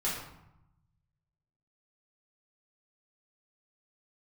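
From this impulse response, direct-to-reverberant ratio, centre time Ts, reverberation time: −7.5 dB, 52 ms, 0.85 s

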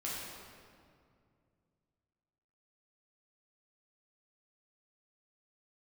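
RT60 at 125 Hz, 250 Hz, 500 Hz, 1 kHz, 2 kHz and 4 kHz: 3.4, 2.9, 2.5, 2.1, 1.8, 1.4 seconds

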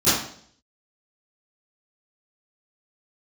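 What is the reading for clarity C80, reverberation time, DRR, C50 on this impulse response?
5.5 dB, 0.60 s, −20.0 dB, 0.5 dB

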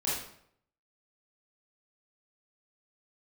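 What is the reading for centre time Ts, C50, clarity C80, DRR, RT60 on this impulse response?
60 ms, 0.0 dB, 5.0 dB, −8.0 dB, 0.70 s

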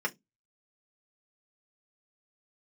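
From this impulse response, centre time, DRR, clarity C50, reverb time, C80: 5 ms, −1.0 dB, 27.0 dB, 0.15 s, 37.5 dB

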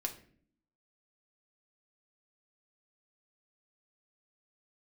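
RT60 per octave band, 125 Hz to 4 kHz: 0.75, 0.95, 0.65, 0.40, 0.50, 0.35 seconds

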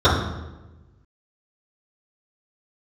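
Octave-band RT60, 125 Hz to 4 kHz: 1.6, 1.4, 1.2, 1.0, 0.90, 0.75 seconds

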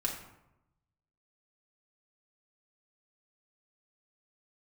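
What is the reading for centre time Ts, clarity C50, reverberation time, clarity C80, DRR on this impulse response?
30 ms, 6.0 dB, 0.90 s, 9.0 dB, −1.0 dB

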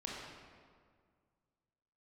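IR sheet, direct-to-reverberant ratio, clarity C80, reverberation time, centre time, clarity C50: −4.0 dB, 1.0 dB, 1.9 s, 105 ms, −1.5 dB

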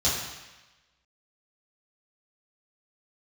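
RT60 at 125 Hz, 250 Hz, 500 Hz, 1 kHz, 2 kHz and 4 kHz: 1.0, 1.0, 1.0, 1.2, 1.2, 1.1 seconds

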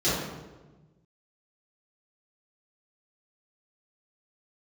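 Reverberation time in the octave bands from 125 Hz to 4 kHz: 1.8, 1.5, 1.3, 1.1, 0.90, 0.75 seconds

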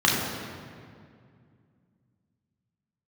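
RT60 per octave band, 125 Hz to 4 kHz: 3.4, 3.1, 2.4, 2.1, 1.9, 1.4 seconds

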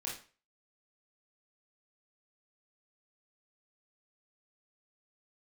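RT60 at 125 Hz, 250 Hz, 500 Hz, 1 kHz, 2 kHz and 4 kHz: 0.40, 0.35, 0.40, 0.35, 0.35, 0.35 seconds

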